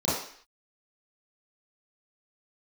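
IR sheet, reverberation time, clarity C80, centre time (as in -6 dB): 0.55 s, 6.0 dB, 58 ms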